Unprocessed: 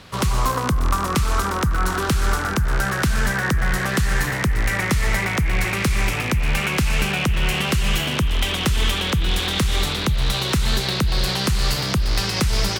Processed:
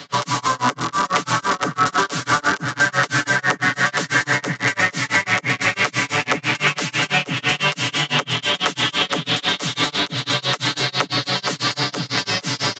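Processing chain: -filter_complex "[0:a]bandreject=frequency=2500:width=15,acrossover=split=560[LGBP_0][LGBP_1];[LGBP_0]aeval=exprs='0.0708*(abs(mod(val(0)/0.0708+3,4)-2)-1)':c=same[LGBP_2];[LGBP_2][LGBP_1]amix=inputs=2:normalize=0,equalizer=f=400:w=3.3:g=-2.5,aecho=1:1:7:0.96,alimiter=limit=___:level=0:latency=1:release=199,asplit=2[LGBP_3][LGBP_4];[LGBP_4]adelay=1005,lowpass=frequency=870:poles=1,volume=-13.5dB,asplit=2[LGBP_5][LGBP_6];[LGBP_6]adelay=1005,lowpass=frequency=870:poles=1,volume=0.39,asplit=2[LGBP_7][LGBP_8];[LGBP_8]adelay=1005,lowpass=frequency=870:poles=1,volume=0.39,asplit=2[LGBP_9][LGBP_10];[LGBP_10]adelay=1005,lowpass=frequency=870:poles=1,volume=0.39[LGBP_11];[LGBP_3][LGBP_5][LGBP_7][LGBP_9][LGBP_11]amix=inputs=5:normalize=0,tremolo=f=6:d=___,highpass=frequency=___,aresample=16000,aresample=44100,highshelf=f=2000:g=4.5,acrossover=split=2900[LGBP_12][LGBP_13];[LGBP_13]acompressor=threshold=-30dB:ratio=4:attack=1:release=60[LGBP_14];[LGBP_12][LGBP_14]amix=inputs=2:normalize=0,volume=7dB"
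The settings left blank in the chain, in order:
-12dB, 0.99, 180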